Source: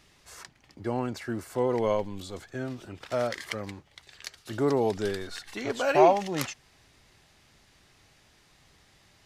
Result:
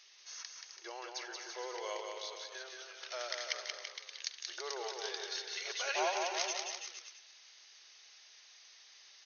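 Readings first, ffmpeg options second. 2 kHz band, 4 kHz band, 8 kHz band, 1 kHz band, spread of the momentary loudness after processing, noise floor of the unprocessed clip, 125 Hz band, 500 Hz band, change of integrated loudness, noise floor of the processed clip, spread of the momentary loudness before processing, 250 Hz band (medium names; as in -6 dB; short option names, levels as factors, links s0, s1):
-4.0 dB, +2.5 dB, +3.0 dB, -11.5 dB, 22 LU, -62 dBFS, under -40 dB, -15.5 dB, -11.0 dB, -60 dBFS, 21 LU, -24.0 dB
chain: -filter_complex "[0:a]aderivative,afftfilt=real='re*between(b*sr/4096,340,6600)':imag='im*between(b*sr/4096,340,6600)':win_size=4096:overlap=0.75,asplit=2[s0][s1];[s1]acompressor=threshold=0.00141:ratio=6,volume=0.708[s2];[s0][s2]amix=inputs=2:normalize=0,aecho=1:1:180|333|463|573.6|667.6:0.631|0.398|0.251|0.158|0.1,volume=1.58"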